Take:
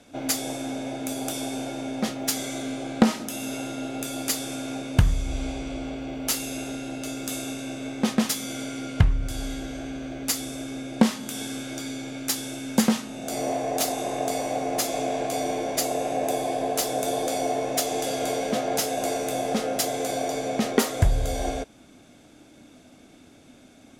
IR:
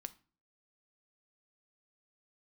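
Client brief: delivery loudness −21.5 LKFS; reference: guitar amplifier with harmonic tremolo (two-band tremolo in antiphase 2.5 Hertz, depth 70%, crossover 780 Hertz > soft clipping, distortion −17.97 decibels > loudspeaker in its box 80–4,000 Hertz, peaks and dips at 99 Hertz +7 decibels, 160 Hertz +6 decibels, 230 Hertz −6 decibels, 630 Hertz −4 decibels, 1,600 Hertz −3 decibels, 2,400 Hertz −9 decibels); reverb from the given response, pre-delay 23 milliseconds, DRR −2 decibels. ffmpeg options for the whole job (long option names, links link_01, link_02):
-filter_complex "[0:a]asplit=2[link_01][link_02];[1:a]atrim=start_sample=2205,adelay=23[link_03];[link_02][link_03]afir=irnorm=-1:irlink=0,volume=6dB[link_04];[link_01][link_04]amix=inputs=2:normalize=0,acrossover=split=780[link_05][link_06];[link_05]aeval=exprs='val(0)*(1-0.7/2+0.7/2*cos(2*PI*2.5*n/s))':channel_layout=same[link_07];[link_06]aeval=exprs='val(0)*(1-0.7/2-0.7/2*cos(2*PI*2.5*n/s))':channel_layout=same[link_08];[link_07][link_08]amix=inputs=2:normalize=0,asoftclip=threshold=-12dB,highpass=80,equalizer=frequency=99:width_type=q:width=4:gain=7,equalizer=frequency=160:width_type=q:width=4:gain=6,equalizer=frequency=230:width_type=q:width=4:gain=-6,equalizer=frequency=630:width_type=q:width=4:gain=-4,equalizer=frequency=1600:width_type=q:width=4:gain=-3,equalizer=frequency=2400:width_type=q:width=4:gain=-9,lowpass=frequency=4000:width=0.5412,lowpass=frequency=4000:width=1.3066,volume=9dB"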